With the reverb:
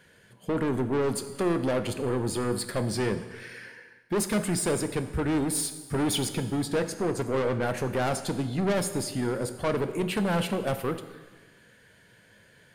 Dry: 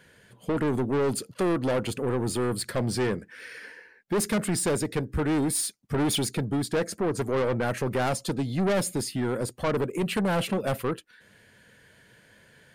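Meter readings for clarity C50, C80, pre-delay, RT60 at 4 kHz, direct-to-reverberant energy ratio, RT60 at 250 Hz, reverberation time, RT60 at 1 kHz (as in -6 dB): 11.0 dB, 12.5 dB, 9 ms, 1.3 s, 9.0 dB, 1.5 s, 1.3 s, 1.3 s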